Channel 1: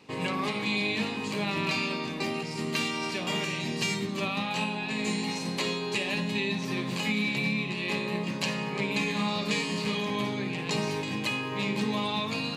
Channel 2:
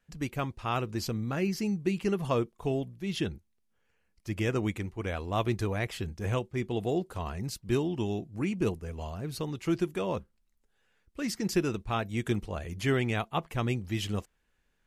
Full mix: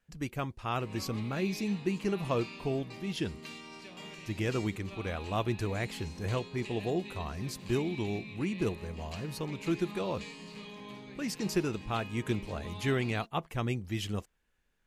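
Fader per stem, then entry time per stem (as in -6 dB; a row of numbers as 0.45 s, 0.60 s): -16.0 dB, -2.5 dB; 0.70 s, 0.00 s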